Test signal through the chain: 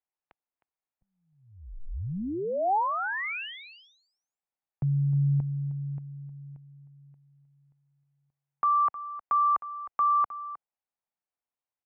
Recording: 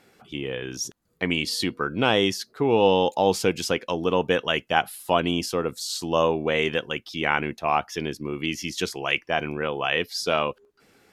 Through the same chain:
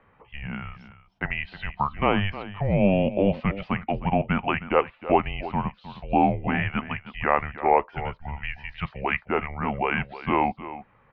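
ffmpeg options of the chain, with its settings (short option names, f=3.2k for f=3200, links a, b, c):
-filter_complex "[0:a]acrossover=split=220[a][b];[a]acompressor=threshold=-49dB:ratio=6[c];[c][b]amix=inputs=2:normalize=0,equalizer=f=1.1k:w=2.3:g=9.5,aecho=1:1:311:0.188,highpass=f=270:t=q:w=0.5412,highpass=f=270:t=q:w=1.307,lowpass=f=2.9k:t=q:w=0.5176,lowpass=f=2.9k:t=q:w=0.7071,lowpass=f=2.9k:t=q:w=1.932,afreqshift=-290,volume=-2dB"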